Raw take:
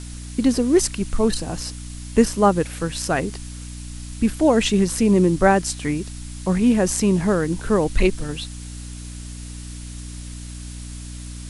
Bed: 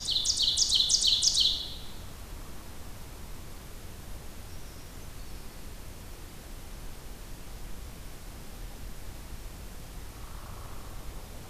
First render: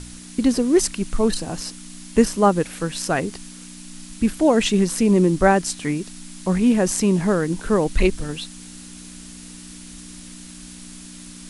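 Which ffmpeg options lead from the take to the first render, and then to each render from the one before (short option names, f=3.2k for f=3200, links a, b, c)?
-af "bandreject=f=60:t=h:w=4,bandreject=f=120:t=h:w=4"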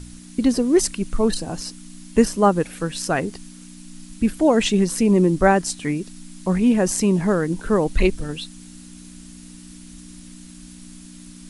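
-af "afftdn=nr=6:nf=-40"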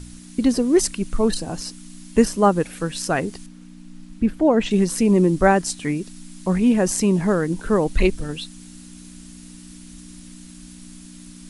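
-filter_complex "[0:a]asettb=1/sr,asplit=3[a][b][c];[a]atrim=end=3.464[d];[b]atrim=start=3.46:end=4.71,asetpts=PTS-STARTPTS,afade=t=in:d=0.004:c=qsin,afade=t=out:st=1.246:d=0.004:c=qsin,lowpass=f=1.6k:p=1[e];[c]atrim=start=4.706[f];[d][e]acrossfade=d=0.004:c1=hsin:c2=qsin[g];[g][f]acrossfade=d=0.004:c1=qsin:c2=hsin"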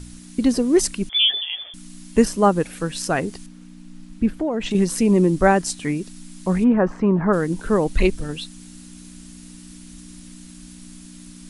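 -filter_complex "[0:a]asettb=1/sr,asplit=3[a][b][c];[a]atrim=end=1.094[d];[b]atrim=start=1.09:end=1.74,asetpts=PTS-STARTPTS,afade=t=in:d=0.004:c=qsin,afade=t=out:st=0.646:d=0.004:c=qsin,lowpass=f=3k:t=q:w=0.5098,lowpass=f=3k:t=q:w=0.6013,lowpass=f=3k:t=q:w=0.9,lowpass=f=3k:t=q:w=2.563,afreqshift=-3500[e];[c]atrim=start=1.736[f];[d][e]acrossfade=d=0.004:c1=hsin:c2=qsin[g];[g][f]acrossfade=d=0.004:c1=qsin:c2=hsin,asettb=1/sr,asplit=3[h][i][j];[h]atrim=end=4.334[k];[i]atrim=start=4.33:end=4.75,asetpts=PTS-STARTPTS,afade=t=in:d=0.004:c=qsin,afade=t=out:st=0.416:d=0.004:c=qsin,acompressor=threshold=-19dB:ratio=6:attack=3.2:release=140:knee=1:detection=peak[l];[j]atrim=start=4.746[m];[k][l]acrossfade=d=0.004:c1=hsin:c2=qsin[n];[n][m]acrossfade=d=0.004:c1=qsin:c2=hsin,asplit=3[o][p][q];[o]afade=t=out:st=6.63:d=0.02[r];[p]lowpass=f=1.3k:t=q:w=2.3,afade=t=in:st=6.63:d=0.02,afade=t=out:st=7.32:d=0.02[s];[q]afade=t=in:st=7.32:d=0.02[t];[r][s][t]amix=inputs=3:normalize=0"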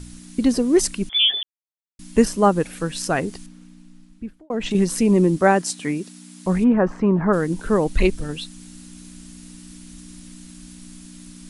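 -filter_complex "[0:a]asettb=1/sr,asplit=3[a][b][c];[a]atrim=end=5.374[d];[b]atrim=start=5.37:end=6.46,asetpts=PTS-STARTPTS,afade=t=in:d=0.004:c=qsin,afade=t=out:st=1.086:d=0.004:c=qsin,highpass=150[e];[c]atrim=start=6.456[f];[d][e]acrossfade=d=0.004:c1=hsin:c2=qsin[g];[g][f]acrossfade=d=0.004:c1=qsin:c2=hsin,asplit=4[h][i][j][k];[h]atrim=end=1.43,asetpts=PTS-STARTPTS,afade=t=out:st=1.426:d=0.004:c=hsin[l];[i]atrim=start=1.43:end=1.99,asetpts=PTS-STARTPTS,volume=0[m];[j]atrim=start=1.99:end=4.5,asetpts=PTS-STARTPTS,afade=t=in:d=0.004:c=hsin,afade=t=out:st=1.37:d=1.14[n];[k]atrim=start=4.5,asetpts=PTS-STARTPTS,afade=t=in:d=0.004:c=hsin[o];[l][m][n][o]concat=n=4:v=0:a=1"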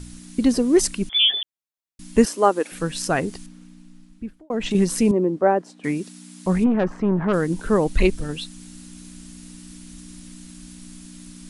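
-filter_complex "[0:a]asettb=1/sr,asplit=3[a][b][c];[a]atrim=end=2.254[d];[b]atrim=start=2.25:end=2.72,asetpts=PTS-STARTPTS,afade=t=in:d=0.004:c=qsin,afade=t=out:st=0.466:d=0.004:c=qsin,highpass=f=290:w=0.5412,highpass=f=290:w=1.3066[e];[c]atrim=start=2.716[f];[d][e]acrossfade=d=0.004:c1=hsin:c2=qsin[g];[g][f]acrossfade=d=0.004:c1=qsin:c2=hsin,asettb=1/sr,asplit=3[h][i][j];[h]atrim=end=5.114[k];[i]atrim=start=5.11:end=5.84,asetpts=PTS-STARTPTS,afade=t=in:d=0.004:c=qsin,afade=t=out:st=0.726:d=0.004:c=qsin,bandpass=f=530:t=q:w=1[l];[j]atrim=start=5.836[m];[k][l]acrossfade=d=0.004:c1=hsin:c2=qsin[n];[n][m]acrossfade=d=0.004:c1=qsin:c2=hsin,asettb=1/sr,asplit=3[o][p][q];[o]atrim=end=6.664[r];[p]atrim=start=6.66:end=7.34,asetpts=PTS-STARTPTS,afade=t=in:d=0.004:c=qsin,afade=t=out:st=0.676:d=0.004:c=qsin,aeval=exprs='(tanh(5.01*val(0)+0.4)-tanh(0.4))/5.01':c=same[s];[q]atrim=start=7.336[t];[r][s]acrossfade=d=0.004:c1=hsin:c2=qsin[u];[u][t]acrossfade=d=0.004:c1=qsin:c2=hsin"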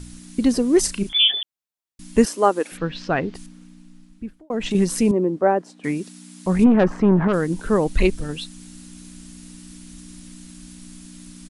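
-filter_complex "[0:a]asplit=3[a][b][c];[a]afade=t=out:st=0.84:d=0.02[d];[b]asplit=2[e][f];[f]adelay=35,volume=-8dB[g];[e][g]amix=inputs=2:normalize=0,afade=t=in:st=0.84:d=0.02,afade=t=out:st=1.3:d=0.02[h];[c]afade=t=in:st=1.3:d=0.02[i];[d][h][i]amix=inputs=3:normalize=0,asplit=3[j][k][l];[j]afade=t=out:st=2.76:d=0.02[m];[k]lowpass=f=4.1k:w=0.5412,lowpass=f=4.1k:w=1.3066,afade=t=in:st=2.76:d=0.02,afade=t=out:st=3.34:d=0.02[n];[l]afade=t=in:st=3.34:d=0.02[o];[m][n][o]amix=inputs=3:normalize=0,asettb=1/sr,asplit=3[p][q][r];[p]atrim=end=6.594[s];[q]atrim=start=6.59:end=7.28,asetpts=PTS-STARTPTS,afade=t=in:d=0.004:c=qsin,afade=t=out:st=0.686:d=0.004:c=qsin,acontrast=26[t];[r]atrim=start=7.276[u];[s][t]acrossfade=d=0.004:c1=hsin:c2=qsin[v];[v][u]acrossfade=d=0.004:c1=qsin:c2=hsin"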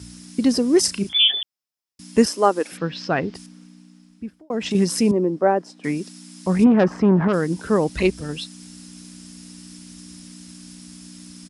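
-af "highpass=f=63:w=0.5412,highpass=f=63:w=1.3066,equalizer=f=5.2k:w=6.1:g=9.5"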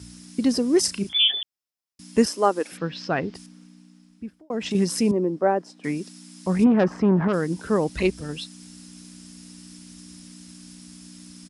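-af "volume=-3dB"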